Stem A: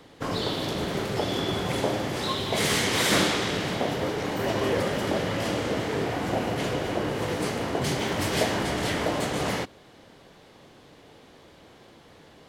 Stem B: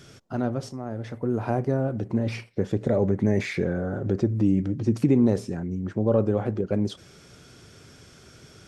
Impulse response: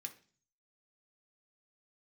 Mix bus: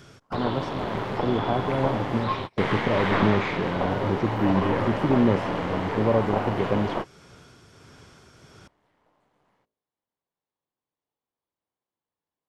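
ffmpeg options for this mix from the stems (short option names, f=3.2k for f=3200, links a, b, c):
-filter_complex "[0:a]bandreject=f=54.55:t=h:w=4,bandreject=f=109.1:t=h:w=4,bandreject=f=163.65:t=h:w=4,bandreject=f=218.2:t=h:w=4,bandreject=f=272.75:t=h:w=4,bandreject=f=327.3:t=h:w=4,bandreject=f=381.85:t=h:w=4,bandreject=f=436.4:t=h:w=4,bandreject=f=490.95:t=h:w=4,bandreject=f=545.5:t=h:w=4,bandreject=f=600.05:t=h:w=4,bandreject=f=654.6:t=h:w=4,bandreject=f=709.15:t=h:w=4,acrossover=split=2800[a][b];[b]acompressor=threshold=-43dB:ratio=4:attack=1:release=60[c];[a][c]amix=inputs=2:normalize=0,aeval=exprs='(tanh(8.91*val(0)+0.75)-tanh(0.75))/8.91':c=same,volume=2.5dB[d];[1:a]tremolo=f=1.5:d=0.36,volume=0dB,asplit=2[e][f];[f]apad=whole_len=550440[g];[d][g]sidechaingate=range=-41dB:threshold=-43dB:ratio=16:detection=peak[h];[h][e]amix=inputs=2:normalize=0,acrossover=split=4400[i][j];[j]acompressor=threshold=-60dB:ratio=4:attack=1:release=60[k];[i][k]amix=inputs=2:normalize=0,equalizer=f=980:w=1.9:g=7.5"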